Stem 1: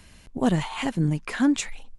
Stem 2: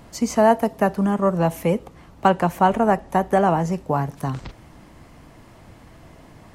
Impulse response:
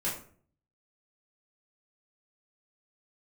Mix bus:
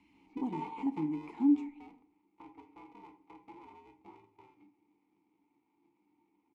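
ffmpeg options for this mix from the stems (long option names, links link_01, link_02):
-filter_complex "[0:a]acrossover=split=1200|4700[link_01][link_02][link_03];[link_01]acompressor=threshold=-21dB:ratio=4[link_04];[link_02]acompressor=threshold=-50dB:ratio=4[link_05];[link_03]acompressor=threshold=-45dB:ratio=4[link_06];[link_04][link_05][link_06]amix=inputs=3:normalize=0,volume=-0.5dB,asplit=2[link_07][link_08];[link_08]volume=-14.5dB[link_09];[1:a]acrossover=split=150|2800[link_10][link_11][link_12];[link_10]acompressor=threshold=-32dB:ratio=4[link_13];[link_11]acompressor=threshold=-19dB:ratio=4[link_14];[link_12]acompressor=threshold=-59dB:ratio=4[link_15];[link_13][link_14][link_15]amix=inputs=3:normalize=0,aeval=exprs='val(0)*sgn(sin(2*PI*250*n/s))':channel_layout=same,adelay=150,volume=-12.5dB,afade=type=out:start_time=0.95:duration=0.57:silence=0.354813,asplit=2[link_16][link_17];[link_17]volume=-8dB[link_18];[2:a]atrim=start_sample=2205[link_19];[link_09][link_18]amix=inputs=2:normalize=0[link_20];[link_20][link_19]afir=irnorm=-1:irlink=0[link_21];[link_07][link_16][link_21]amix=inputs=3:normalize=0,asplit=3[link_22][link_23][link_24];[link_22]bandpass=frequency=300:width_type=q:width=8,volume=0dB[link_25];[link_23]bandpass=frequency=870:width_type=q:width=8,volume=-6dB[link_26];[link_24]bandpass=frequency=2240:width_type=q:width=8,volume=-9dB[link_27];[link_25][link_26][link_27]amix=inputs=3:normalize=0"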